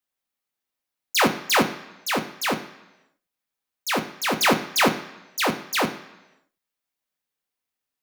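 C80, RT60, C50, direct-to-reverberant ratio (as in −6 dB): 14.0 dB, 1.0 s, 12.0 dB, 4.0 dB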